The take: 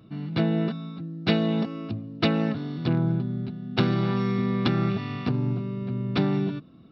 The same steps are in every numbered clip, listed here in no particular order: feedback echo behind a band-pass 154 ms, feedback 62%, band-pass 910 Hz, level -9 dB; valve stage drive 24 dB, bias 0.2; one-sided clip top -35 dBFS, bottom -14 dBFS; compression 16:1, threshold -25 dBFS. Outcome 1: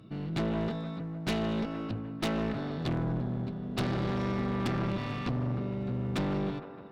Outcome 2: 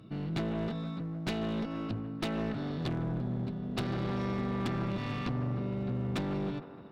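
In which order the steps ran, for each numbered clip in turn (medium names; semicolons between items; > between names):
one-sided clip > feedback echo behind a band-pass > valve stage > compression; compression > valve stage > one-sided clip > feedback echo behind a band-pass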